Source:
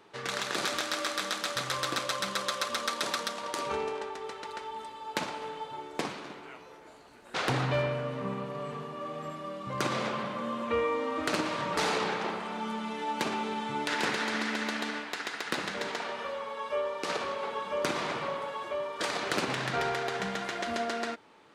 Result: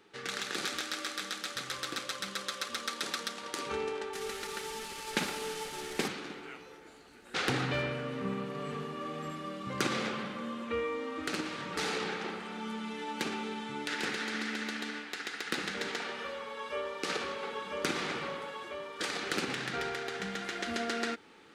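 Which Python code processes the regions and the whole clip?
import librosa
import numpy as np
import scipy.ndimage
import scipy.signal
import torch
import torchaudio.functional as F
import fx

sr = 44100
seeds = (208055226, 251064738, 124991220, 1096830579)

y = fx.chain(x, sr, fx.delta_mod(bps=64000, step_db=-36.0),
    fx.comb(ms=5.0, depth=0.32), at=(4.13, 6.08))
y = fx.graphic_eq_31(y, sr, hz=(125, 630, 1000), db=(-7, -11, -10))
y = fx.rider(y, sr, range_db=10, speed_s=2.0)
y = y * 10.0 ** (-2.0 / 20.0)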